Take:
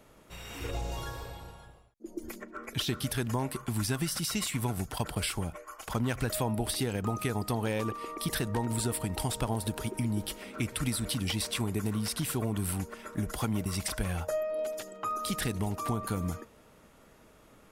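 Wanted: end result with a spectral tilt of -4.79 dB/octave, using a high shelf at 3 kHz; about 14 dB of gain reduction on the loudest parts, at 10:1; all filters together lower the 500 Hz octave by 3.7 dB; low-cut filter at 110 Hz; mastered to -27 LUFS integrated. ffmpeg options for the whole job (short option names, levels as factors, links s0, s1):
-af "highpass=110,equalizer=f=500:t=o:g=-4.5,highshelf=f=3000:g=-8,acompressor=threshold=0.00708:ratio=10,volume=10.6"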